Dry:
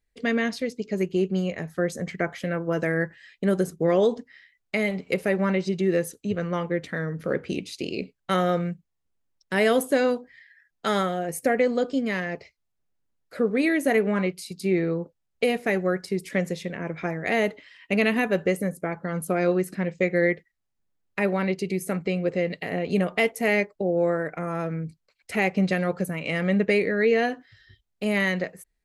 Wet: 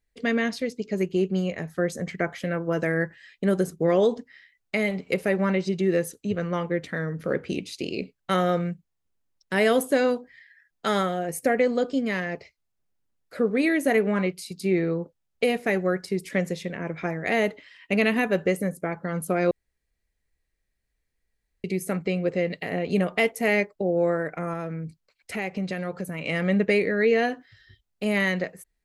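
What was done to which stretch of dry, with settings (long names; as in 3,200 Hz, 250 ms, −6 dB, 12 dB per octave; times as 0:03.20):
0:19.51–0:21.64: fill with room tone
0:24.53–0:26.19: downward compressor 2 to 1, threshold −30 dBFS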